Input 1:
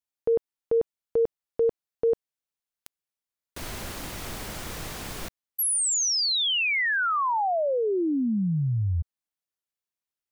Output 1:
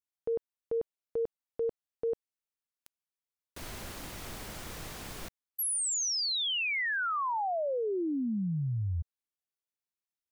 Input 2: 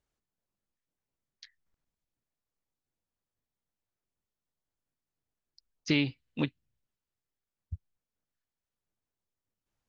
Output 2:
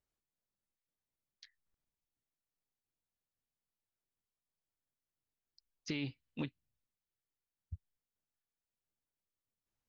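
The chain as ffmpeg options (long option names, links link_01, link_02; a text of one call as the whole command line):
ffmpeg -i in.wav -af "alimiter=limit=-20dB:level=0:latency=1:release=24,volume=-6.5dB" out.wav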